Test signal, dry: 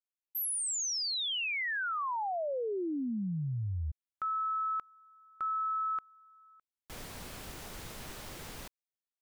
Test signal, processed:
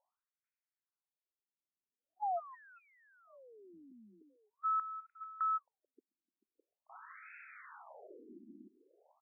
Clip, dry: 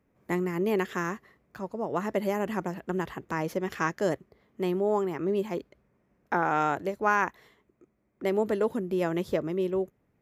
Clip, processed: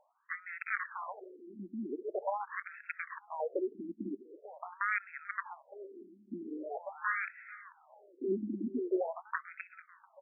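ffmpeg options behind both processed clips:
ffmpeg -i in.wav -filter_complex "[0:a]areverse,acompressor=mode=upward:threshold=-38dB:ratio=2.5:attack=1.3:release=223:knee=2.83:detection=peak,areverse,asoftclip=type=tanh:threshold=-15.5dB,aresample=8000,aresample=44100,aresample=11025,aeval=exprs='(mod(10.6*val(0)+1,2)-1)/10.6':channel_layout=same,aresample=44100,asplit=2[link_01][link_02];[link_02]adelay=440,lowpass=frequency=3100:poles=1,volume=-16.5dB,asplit=2[link_03][link_04];[link_04]adelay=440,lowpass=frequency=3100:poles=1,volume=0.44,asplit=2[link_05][link_06];[link_06]adelay=440,lowpass=frequency=3100:poles=1,volume=0.44,asplit=2[link_07][link_08];[link_08]adelay=440,lowpass=frequency=3100:poles=1,volume=0.44[link_09];[link_01][link_03][link_05][link_07][link_09]amix=inputs=5:normalize=0,afftfilt=real='re*between(b*sr/1024,250*pow(1900/250,0.5+0.5*sin(2*PI*0.44*pts/sr))/1.41,250*pow(1900/250,0.5+0.5*sin(2*PI*0.44*pts/sr))*1.41)':imag='im*between(b*sr/1024,250*pow(1900/250,0.5+0.5*sin(2*PI*0.44*pts/sr))/1.41,250*pow(1900/250,0.5+0.5*sin(2*PI*0.44*pts/sr))*1.41)':win_size=1024:overlap=0.75" out.wav

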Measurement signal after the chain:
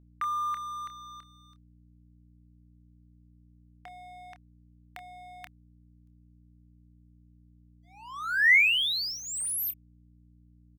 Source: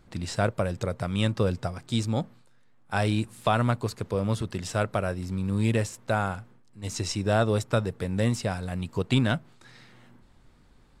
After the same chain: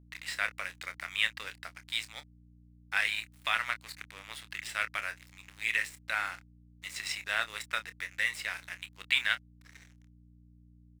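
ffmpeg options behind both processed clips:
ffmpeg -i in.wav -filter_complex "[0:a]highpass=frequency=2000:width_type=q:width=4,equalizer=frequency=6200:width=2.6:gain=-9.5,aeval=exprs='sgn(val(0))*max(abs(val(0))-0.00562,0)':channel_layout=same,aeval=exprs='val(0)+0.00158*(sin(2*PI*60*n/s)+sin(2*PI*2*60*n/s)/2+sin(2*PI*3*60*n/s)/3+sin(2*PI*4*60*n/s)/4+sin(2*PI*5*60*n/s)/5)':channel_layout=same,asplit=2[link_01][link_02];[link_02]adelay=27,volume=-11dB[link_03];[link_01][link_03]amix=inputs=2:normalize=0" out.wav

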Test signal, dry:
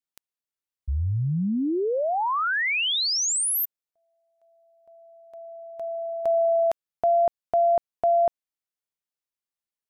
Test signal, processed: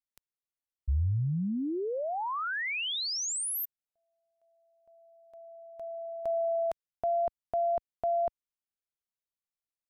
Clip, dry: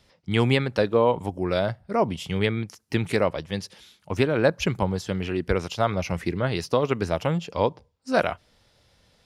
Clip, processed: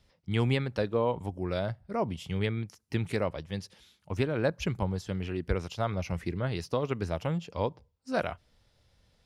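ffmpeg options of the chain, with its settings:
ffmpeg -i in.wav -af "lowshelf=frequency=110:gain=10,volume=-8.5dB" out.wav

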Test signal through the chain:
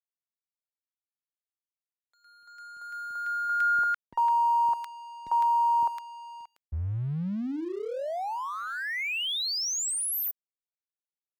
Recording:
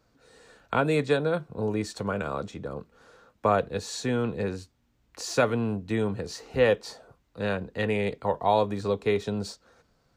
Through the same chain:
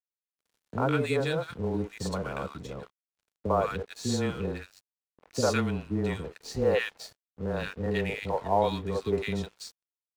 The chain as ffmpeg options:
ffmpeg -i in.wav -filter_complex "[0:a]afreqshift=-14,acrossover=split=410|1300[link_01][link_02][link_03];[link_02]adelay=50[link_04];[link_03]adelay=160[link_05];[link_01][link_04][link_05]amix=inputs=3:normalize=0,aeval=exprs='sgn(val(0))*max(abs(val(0))-0.00335,0)':channel_layout=same" out.wav

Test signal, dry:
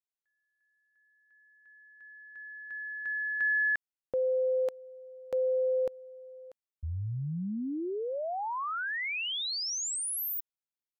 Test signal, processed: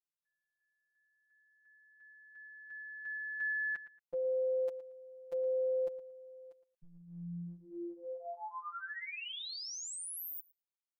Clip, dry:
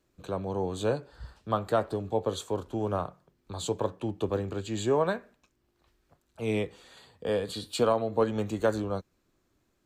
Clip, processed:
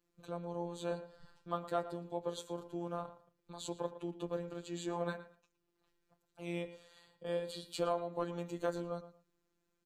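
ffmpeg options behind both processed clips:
ffmpeg -i in.wav -filter_complex "[0:a]afftfilt=real='hypot(re,im)*cos(PI*b)':imag='0':win_size=1024:overlap=0.75,asplit=2[link_01][link_02];[link_02]adelay=114,lowpass=frequency=3500:poles=1,volume=-13.5dB,asplit=2[link_03][link_04];[link_04]adelay=114,lowpass=frequency=3500:poles=1,volume=0.21[link_05];[link_01][link_03][link_05]amix=inputs=3:normalize=0,volume=-6dB" out.wav

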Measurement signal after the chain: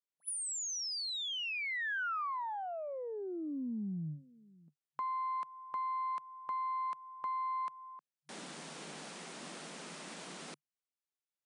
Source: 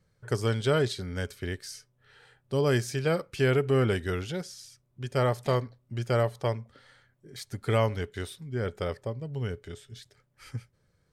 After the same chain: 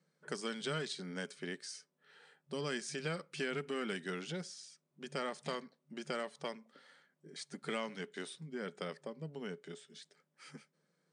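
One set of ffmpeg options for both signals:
ffmpeg -i in.wav -filter_complex "[0:a]aeval=exprs='0.224*(cos(1*acos(clip(val(0)/0.224,-1,1)))-cos(1*PI/2))+0.00562*(cos(3*acos(clip(val(0)/0.224,-1,1)))-cos(3*PI/2))+0.00447*(cos(6*acos(clip(val(0)/0.224,-1,1)))-cos(6*PI/2))+0.00631*(cos(8*acos(clip(val(0)/0.224,-1,1)))-cos(8*PI/2))':channel_layout=same,afftfilt=real='re*between(b*sr/4096,140,10000)':imag='im*between(b*sr/4096,140,10000)':win_size=4096:overlap=0.75,acrossover=split=210|1300[link_01][link_02][link_03];[link_01]acompressor=threshold=-39dB:ratio=4[link_04];[link_02]acompressor=threshold=-38dB:ratio=4[link_05];[link_03]acompressor=threshold=-34dB:ratio=4[link_06];[link_04][link_05][link_06]amix=inputs=3:normalize=0,volume=-4dB" out.wav

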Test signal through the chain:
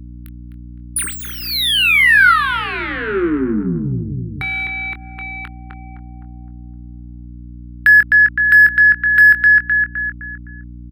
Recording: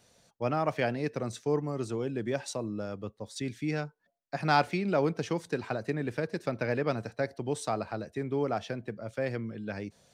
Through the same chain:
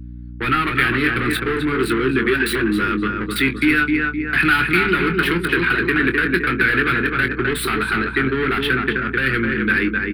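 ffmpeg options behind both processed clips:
ffmpeg -i in.wav -filter_complex "[0:a]anlmdn=0.0251,acrossover=split=150[link_01][link_02];[link_02]acompressor=threshold=-31dB:ratio=2.5[link_03];[link_01][link_03]amix=inputs=2:normalize=0,highshelf=frequency=6800:gain=7.5,asplit=2[link_04][link_05];[link_05]adelay=257,lowpass=frequency=1800:poles=1,volume=-6dB,asplit=2[link_06][link_07];[link_07]adelay=257,lowpass=frequency=1800:poles=1,volume=0.41,asplit=2[link_08][link_09];[link_09]adelay=257,lowpass=frequency=1800:poles=1,volume=0.41,asplit=2[link_10][link_11];[link_11]adelay=257,lowpass=frequency=1800:poles=1,volume=0.41,asplit=2[link_12][link_13];[link_13]adelay=257,lowpass=frequency=1800:poles=1,volume=0.41[link_14];[link_04][link_06][link_08][link_10][link_12][link_14]amix=inputs=6:normalize=0,asplit=2[link_15][link_16];[link_16]highpass=frequency=720:poles=1,volume=25dB,asoftclip=type=tanh:threshold=-17.5dB[link_17];[link_15][link_17]amix=inputs=2:normalize=0,lowpass=frequency=7800:poles=1,volume=-6dB,bandreject=frequency=50:width_type=h:width=6,bandreject=frequency=100:width_type=h:width=6,bandreject=frequency=150:width_type=h:width=6,bandreject=frequency=200:width_type=h:width=6,bandreject=frequency=250:width_type=h:width=6,asplit=2[link_18][link_19];[link_19]adelay=23,volume=-9dB[link_20];[link_18][link_20]amix=inputs=2:normalize=0,asplit=2[link_21][link_22];[link_22]acompressor=threshold=-39dB:ratio=12,volume=3dB[link_23];[link_21][link_23]amix=inputs=2:normalize=0,aeval=exprs='val(0)+0.0126*(sin(2*PI*60*n/s)+sin(2*PI*2*60*n/s)/2+sin(2*PI*3*60*n/s)/3+sin(2*PI*4*60*n/s)/4+sin(2*PI*5*60*n/s)/5)':channel_layout=same,firequalizer=gain_entry='entry(140,0);entry(230,1);entry(370,3);entry(590,-27);entry(1400,8);entry(4200,-3);entry(6100,-30);entry(10000,2)':delay=0.05:min_phase=1,volume=5.5dB" out.wav

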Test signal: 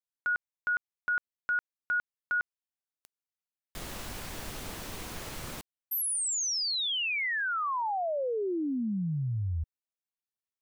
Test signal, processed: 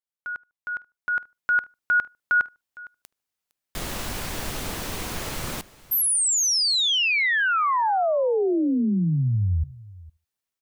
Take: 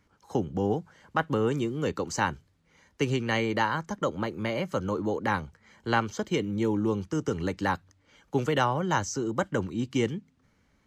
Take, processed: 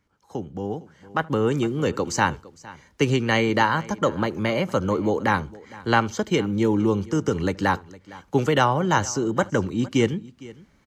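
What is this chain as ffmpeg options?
ffmpeg -i in.wav -filter_complex "[0:a]asplit=2[link_01][link_02];[link_02]aecho=0:1:459:0.0944[link_03];[link_01][link_03]amix=inputs=2:normalize=0,dynaudnorm=framelen=800:gausssize=3:maxgain=13dB,asplit=2[link_04][link_05];[link_05]adelay=75,lowpass=frequency=1400:poles=1,volume=-23dB,asplit=2[link_06][link_07];[link_07]adelay=75,lowpass=frequency=1400:poles=1,volume=0.24[link_08];[link_06][link_08]amix=inputs=2:normalize=0[link_09];[link_04][link_09]amix=inputs=2:normalize=0,volume=-4dB" out.wav

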